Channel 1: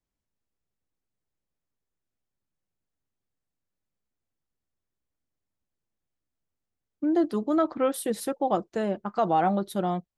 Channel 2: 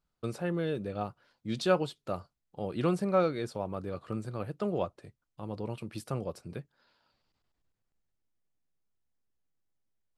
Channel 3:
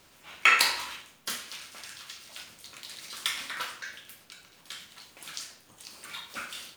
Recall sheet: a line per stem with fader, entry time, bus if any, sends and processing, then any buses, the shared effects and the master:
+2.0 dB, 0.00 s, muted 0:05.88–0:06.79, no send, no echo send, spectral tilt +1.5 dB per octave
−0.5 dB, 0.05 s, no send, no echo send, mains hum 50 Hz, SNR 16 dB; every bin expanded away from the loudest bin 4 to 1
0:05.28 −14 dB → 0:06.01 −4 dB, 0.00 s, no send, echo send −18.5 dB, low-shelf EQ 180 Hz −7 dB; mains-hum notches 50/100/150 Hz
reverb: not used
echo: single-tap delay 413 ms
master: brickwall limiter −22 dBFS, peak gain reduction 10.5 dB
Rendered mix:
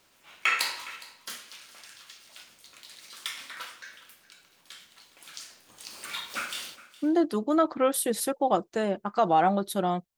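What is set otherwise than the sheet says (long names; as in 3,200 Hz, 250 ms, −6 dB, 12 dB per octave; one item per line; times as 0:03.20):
stem 2: muted
stem 3 −14.0 dB → −5.0 dB
master: missing brickwall limiter −22 dBFS, peak gain reduction 10.5 dB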